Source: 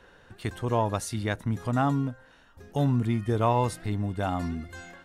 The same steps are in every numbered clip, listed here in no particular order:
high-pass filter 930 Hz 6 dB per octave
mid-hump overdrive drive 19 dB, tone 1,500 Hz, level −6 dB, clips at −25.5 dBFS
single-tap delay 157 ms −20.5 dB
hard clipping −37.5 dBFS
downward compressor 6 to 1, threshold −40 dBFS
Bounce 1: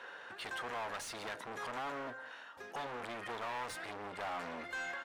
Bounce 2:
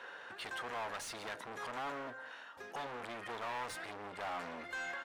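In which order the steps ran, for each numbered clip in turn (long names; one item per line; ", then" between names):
hard clipping, then high-pass filter, then downward compressor, then mid-hump overdrive, then single-tap delay
hard clipping, then downward compressor, then high-pass filter, then mid-hump overdrive, then single-tap delay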